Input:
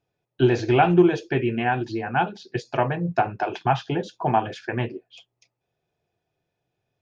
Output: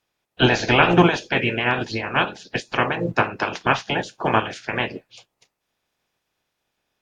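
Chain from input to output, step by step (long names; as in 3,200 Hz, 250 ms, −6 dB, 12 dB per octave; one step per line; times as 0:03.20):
ceiling on every frequency bin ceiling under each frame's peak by 21 dB
level +2 dB
AAC 64 kbit/s 44,100 Hz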